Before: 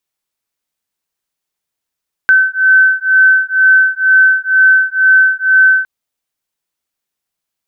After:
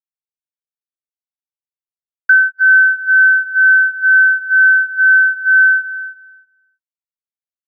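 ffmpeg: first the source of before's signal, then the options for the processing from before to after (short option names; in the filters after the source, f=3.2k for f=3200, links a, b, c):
-f lavfi -i "aevalsrc='0.335*(sin(2*PI*1530*t)+sin(2*PI*1532.1*t))':d=3.56:s=44100"
-filter_complex "[0:a]agate=range=-33dB:threshold=-14dB:ratio=16:detection=peak,asplit=2[a][b];[b]adelay=315,lowpass=f=1.2k:p=1,volume=-11.5dB,asplit=2[c][d];[d]adelay=315,lowpass=f=1.2k:p=1,volume=0.2,asplit=2[e][f];[f]adelay=315,lowpass=f=1.2k:p=1,volume=0.2[g];[a][c][e][g]amix=inputs=4:normalize=0,adynamicequalizer=threshold=0.0891:dfrequency=1600:dqfactor=0.7:tfrequency=1600:tqfactor=0.7:attack=5:release=100:ratio=0.375:range=2.5:mode=cutabove:tftype=highshelf"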